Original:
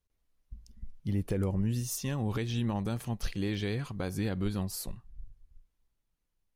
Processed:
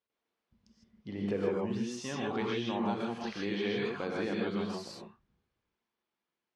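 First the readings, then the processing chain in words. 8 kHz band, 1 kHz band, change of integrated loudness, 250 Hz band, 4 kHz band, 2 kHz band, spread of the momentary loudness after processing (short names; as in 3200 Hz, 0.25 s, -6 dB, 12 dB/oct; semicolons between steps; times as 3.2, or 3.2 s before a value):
-9.5 dB, +5.0 dB, -1.0 dB, -0.5 dB, +1.0 dB, +3.5 dB, 11 LU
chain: BPF 300–4300 Hz; air absorption 53 m; non-linear reverb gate 0.18 s rising, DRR -3 dB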